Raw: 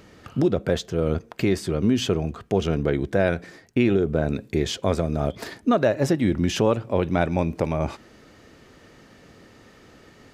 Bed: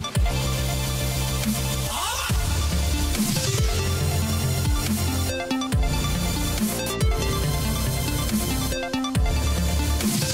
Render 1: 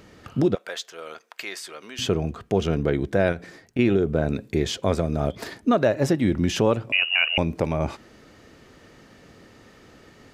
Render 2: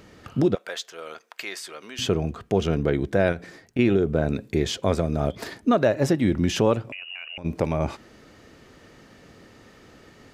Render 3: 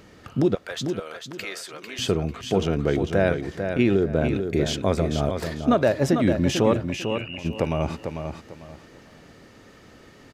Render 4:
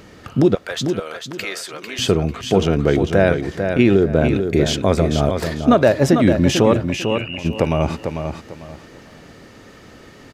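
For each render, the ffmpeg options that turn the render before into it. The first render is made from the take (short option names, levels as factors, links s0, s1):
-filter_complex "[0:a]asettb=1/sr,asplit=3[s0][s1][s2];[s0]atrim=end=0.554[s3];[s1]atrim=start=0.55:end=1.99,asetpts=PTS-STARTPTS,afade=t=in:d=0.004:c=qsin,afade=t=out:st=1.436:d=0.004:c=qsin,highpass=1100[s4];[s2]atrim=start=1.986[s5];[s3][s4]acrossfade=d=0.004:c1=hsin:c2=qsin[s6];[s6][s5]acrossfade=d=0.004:c1=qsin:c2=hsin,asettb=1/sr,asplit=3[s7][s8][s9];[s7]atrim=end=3.324[s10];[s8]atrim=start=3.32:end=3.79,asetpts=PTS-STARTPTS,afade=t=in:d=0.004:c=qsin,afade=t=out:st=0.466:d=0.004:c=qsin,acompressor=threshold=0.0355:ratio=2:attack=3.2:release=140:knee=1:detection=peak[s11];[s9]atrim=start=3.786[s12];[s10][s11]acrossfade=d=0.004:c1=hsin:c2=qsin[s13];[s13][s12]acrossfade=d=0.004:c1=qsin:c2=hsin,asettb=1/sr,asplit=3[s14][s15][s16];[s14]atrim=end=6.924[s17];[s15]atrim=start=6.92:end=7.38,asetpts=PTS-STARTPTS,afade=t=in:d=0.004:c=qsin,afade=t=out:st=0.456:d=0.004:c=qsin,lowpass=f=2600:t=q:w=0.5098,lowpass=f=2600:t=q:w=0.6013,lowpass=f=2600:t=q:w=0.9,lowpass=f=2600:t=q:w=2.563,afreqshift=-3000[s18];[s16]atrim=start=7.376[s19];[s17][s18]acrossfade=d=0.004:c1=hsin:c2=qsin[s20];[s20][s19]acrossfade=d=0.004:c1=qsin:c2=hsin"
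-filter_complex "[0:a]asplit=3[s0][s1][s2];[s0]afade=t=out:st=6.81:d=0.02[s3];[s1]acompressor=threshold=0.0224:ratio=10:attack=3.2:release=140:knee=1:detection=peak,afade=t=in:st=6.81:d=0.02,afade=t=out:st=7.44:d=0.02[s4];[s2]afade=t=in:st=7.44:d=0.02[s5];[s3][s4][s5]amix=inputs=3:normalize=0"
-af "aecho=1:1:447|894|1341:0.447|0.121|0.0326"
-af "volume=2.11,alimiter=limit=0.794:level=0:latency=1"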